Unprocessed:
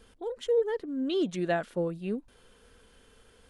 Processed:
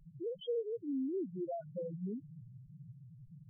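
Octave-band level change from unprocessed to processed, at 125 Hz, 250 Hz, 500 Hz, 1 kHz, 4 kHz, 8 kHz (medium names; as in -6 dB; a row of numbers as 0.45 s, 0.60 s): -6.0 dB, -7.0 dB, -9.5 dB, under -10 dB, under -10 dB, under -25 dB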